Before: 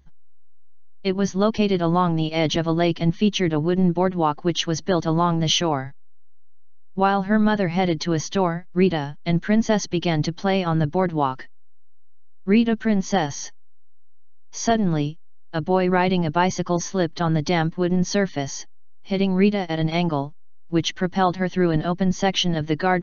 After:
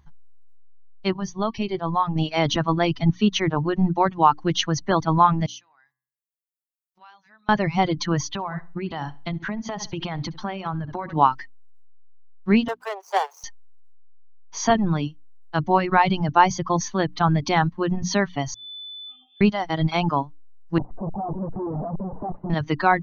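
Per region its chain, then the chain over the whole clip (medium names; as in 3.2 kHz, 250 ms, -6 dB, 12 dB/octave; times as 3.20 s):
1.17–2.16 s: peaking EQ 1.5 kHz -8.5 dB 0.32 oct + feedback comb 380 Hz, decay 0.19 s, mix 50%
5.46–7.49 s: compression 3:1, threshold -34 dBFS + differentiator + de-hum 128.8 Hz, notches 16
8.29–11.16 s: low-pass 6 kHz + feedback delay 68 ms, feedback 29%, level -12.5 dB + compression 16:1, threshold -23 dBFS
12.68–13.44 s: median filter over 25 samples + steep high-pass 400 Hz 96 dB/octave
18.54–19.41 s: compression 10:1, threshold -26 dBFS + inharmonic resonator 330 Hz, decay 0.83 s, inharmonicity 0.008 + frequency inversion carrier 3.5 kHz
20.78–22.50 s: one-bit comparator + inverse Chebyshev low-pass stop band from 2.9 kHz, stop band 70 dB + bass shelf 360 Hz -5.5 dB
whole clip: hum notches 60/120/180/240/300 Hz; reverb removal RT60 1.1 s; graphic EQ 125/500/1000 Hz +4/-5/+9 dB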